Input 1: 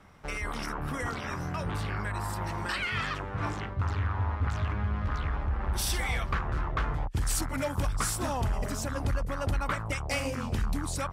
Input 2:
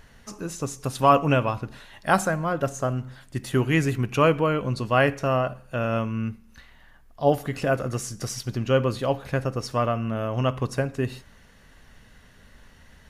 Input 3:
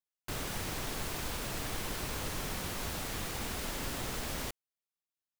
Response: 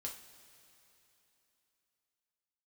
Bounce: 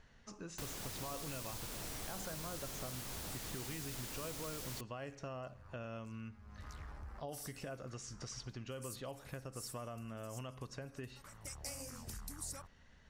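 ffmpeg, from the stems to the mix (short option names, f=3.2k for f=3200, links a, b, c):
-filter_complex "[0:a]aexciter=amount=6.6:drive=5.6:freq=4.7k,adelay=1550,volume=-17dB[a];[1:a]lowpass=f=7.2k:w=0.5412,lowpass=f=7.2k:w=1.3066,alimiter=limit=-15.5dB:level=0:latency=1,volume=-12dB,asplit=2[b][c];[2:a]adelay=300,volume=-3.5dB[d];[c]apad=whole_len=558828[e];[a][e]sidechaincompress=threshold=-55dB:ratio=4:attack=8.9:release=314[f];[f][b][d]amix=inputs=3:normalize=0,acrossover=split=1000|4000[g][h][i];[g]acompressor=threshold=-45dB:ratio=4[j];[h]acompressor=threshold=-55dB:ratio=4[k];[i]acompressor=threshold=-44dB:ratio=4[l];[j][k][l]amix=inputs=3:normalize=0"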